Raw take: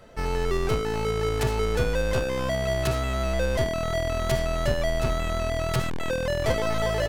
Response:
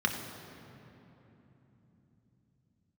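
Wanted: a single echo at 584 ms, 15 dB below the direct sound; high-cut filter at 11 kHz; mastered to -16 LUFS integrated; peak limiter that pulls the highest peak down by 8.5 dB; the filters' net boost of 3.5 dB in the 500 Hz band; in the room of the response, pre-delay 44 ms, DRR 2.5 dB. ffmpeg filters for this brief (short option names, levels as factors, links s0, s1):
-filter_complex "[0:a]lowpass=11000,equalizer=f=500:t=o:g=4.5,alimiter=limit=0.133:level=0:latency=1,aecho=1:1:584:0.178,asplit=2[s0][s1];[1:a]atrim=start_sample=2205,adelay=44[s2];[s1][s2]afir=irnorm=-1:irlink=0,volume=0.251[s3];[s0][s3]amix=inputs=2:normalize=0,volume=2.37"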